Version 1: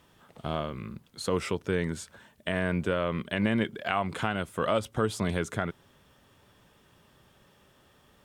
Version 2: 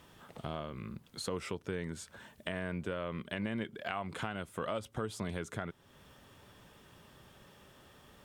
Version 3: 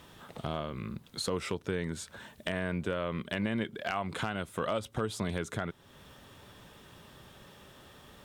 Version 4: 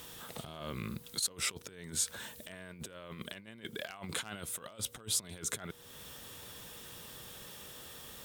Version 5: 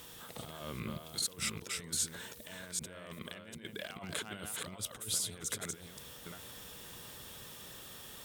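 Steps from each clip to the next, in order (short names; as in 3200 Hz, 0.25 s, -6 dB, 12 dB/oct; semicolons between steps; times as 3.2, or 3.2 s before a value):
compressor 2:1, threshold -46 dBFS, peak gain reduction 13.5 dB; gain +2.5 dB
bell 3800 Hz +4.5 dB 0.21 oct; overloaded stage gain 24.5 dB; gain +4.5 dB
whine 480 Hz -61 dBFS; negative-ratio compressor -38 dBFS, ratio -0.5; pre-emphasis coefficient 0.8; gain +8 dB
reverse delay 0.399 s, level -3 dB; gain -2 dB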